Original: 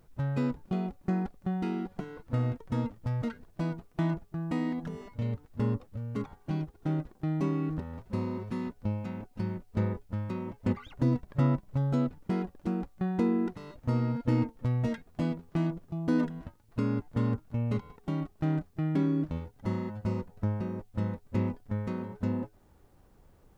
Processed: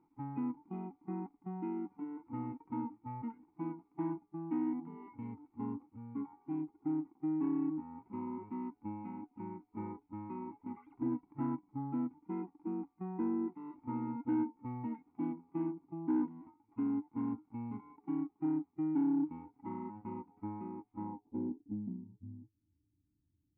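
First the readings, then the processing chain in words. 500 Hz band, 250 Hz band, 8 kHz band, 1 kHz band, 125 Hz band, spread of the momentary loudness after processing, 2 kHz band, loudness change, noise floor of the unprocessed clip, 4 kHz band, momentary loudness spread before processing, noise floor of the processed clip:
−9.5 dB, −5.0 dB, can't be measured, −4.0 dB, −17.5 dB, 11 LU, below −15 dB, −7.0 dB, −61 dBFS, below −25 dB, 8 LU, −79 dBFS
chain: formant filter u
in parallel at +0.5 dB: downward compressor, threshold −52 dBFS, peak gain reduction 21 dB
on the sum: harmonic and percussive parts rebalanced percussive −13 dB
low-pass filter sweep 1,400 Hz → 100 Hz, 0:20.92–0:22.21
soft clipping −28 dBFS, distortion −18 dB
level +2.5 dB

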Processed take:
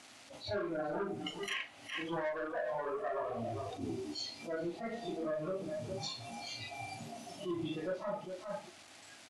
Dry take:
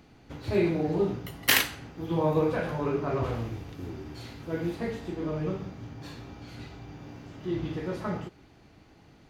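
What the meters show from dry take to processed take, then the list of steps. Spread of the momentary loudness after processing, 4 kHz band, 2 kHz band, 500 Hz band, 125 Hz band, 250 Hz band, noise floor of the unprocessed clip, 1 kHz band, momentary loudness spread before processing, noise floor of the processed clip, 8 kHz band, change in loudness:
7 LU, −8.0 dB, −9.5 dB, −7.0 dB, −15.0 dB, −10.0 dB, −56 dBFS, −5.0 dB, 19 LU, −56 dBFS, −13.5 dB, −10.0 dB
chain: treble cut that deepens with the level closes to 2,000 Hz, closed at −23.5 dBFS
graphic EQ with 15 bands 100 Hz +11 dB, 250 Hz +10 dB, 630 Hz +11 dB, 1,600 Hz −10 dB, 6,300 Hz +4 dB
bit reduction 9 bits
mid-hump overdrive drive 23 dB, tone 6,700 Hz, clips at −6.5 dBFS
tilt shelving filter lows −7.5 dB, about 890 Hz
notch filter 460 Hz, Q 12
single-tap delay 410 ms −11 dB
downward compressor 20 to 1, threshold −28 dBFS, peak gain reduction 19 dB
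noise reduction from a noise print of the clip's start 15 dB
Chebyshev low-pass filter 11,000 Hz, order 5
double-tracking delay 39 ms −11.5 dB
level that may rise only so fast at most 140 dB per second
level −4 dB

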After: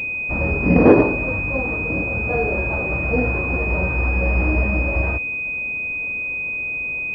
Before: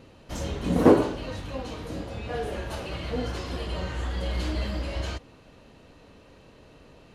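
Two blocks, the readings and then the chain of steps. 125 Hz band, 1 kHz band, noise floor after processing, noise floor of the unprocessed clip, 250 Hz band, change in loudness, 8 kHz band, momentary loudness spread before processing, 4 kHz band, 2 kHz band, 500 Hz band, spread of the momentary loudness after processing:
+9.5 dB, +6.5 dB, −26 dBFS, −53 dBFS, +7.0 dB, +9.0 dB, below −15 dB, 15 LU, below −10 dB, +20.5 dB, +7.0 dB, 8 LU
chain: variable-slope delta modulation 32 kbit/s
boost into a limiter +10 dB
switching amplifier with a slow clock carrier 2,500 Hz

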